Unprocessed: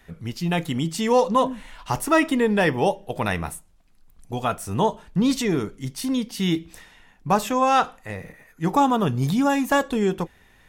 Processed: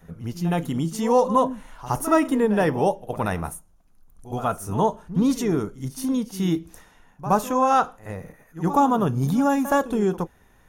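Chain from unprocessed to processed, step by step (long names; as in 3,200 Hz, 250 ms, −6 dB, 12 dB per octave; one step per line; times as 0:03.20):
flat-topped bell 3,000 Hz −8.5 dB
notch filter 7,800 Hz, Q 6
echo ahead of the sound 69 ms −14 dB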